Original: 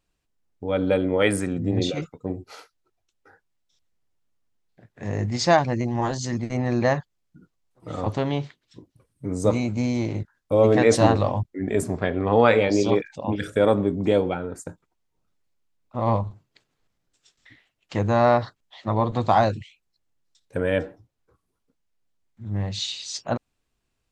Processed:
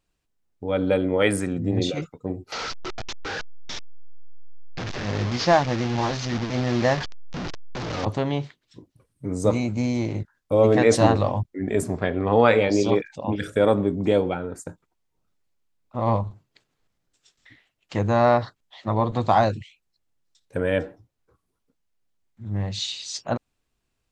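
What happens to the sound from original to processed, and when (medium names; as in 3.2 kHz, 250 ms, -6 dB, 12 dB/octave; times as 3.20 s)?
2.52–8.05 s: one-bit delta coder 32 kbps, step -24 dBFS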